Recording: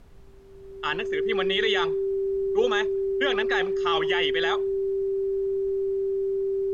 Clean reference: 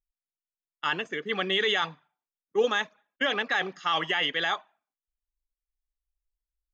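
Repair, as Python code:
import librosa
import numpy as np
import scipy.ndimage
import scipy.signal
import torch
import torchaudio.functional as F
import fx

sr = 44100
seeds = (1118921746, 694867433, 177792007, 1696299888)

y = fx.notch(x, sr, hz=390.0, q=30.0)
y = fx.noise_reduce(y, sr, print_start_s=0.0, print_end_s=0.5, reduce_db=30.0)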